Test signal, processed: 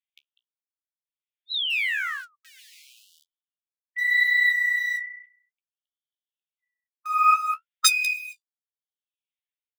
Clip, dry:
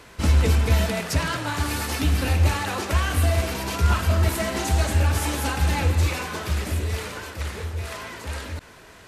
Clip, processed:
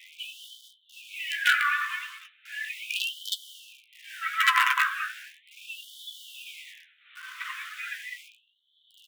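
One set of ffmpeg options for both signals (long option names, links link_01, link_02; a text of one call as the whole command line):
ffmpeg -i in.wav -filter_complex "[0:a]tremolo=f=0.65:d=0.99,asplit=2[link_01][link_02];[link_02]adelay=198.3,volume=-8dB,highshelf=frequency=4000:gain=-4.46[link_03];[link_01][link_03]amix=inputs=2:normalize=0,aresample=8000,aresample=44100,acrossover=split=330|1600[link_04][link_05][link_06];[link_05]acrusher=bits=5:dc=4:mix=0:aa=0.000001[link_07];[link_06]acompressor=threshold=-45dB:ratio=4[link_08];[link_04][link_07][link_08]amix=inputs=3:normalize=0,afftdn=noise_reduction=13:noise_floor=-35,flanger=delay=10:depth=8.6:regen=38:speed=0.89:shape=triangular,alimiter=level_in=16dB:limit=-1dB:release=50:level=0:latency=1,afftfilt=real='re*gte(b*sr/1024,970*pow(3000/970,0.5+0.5*sin(2*PI*0.37*pts/sr)))':imag='im*gte(b*sr/1024,970*pow(3000/970,0.5+0.5*sin(2*PI*0.37*pts/sr)))':win_size=1024:overlap=0.75,volume=5.5dB" out.wav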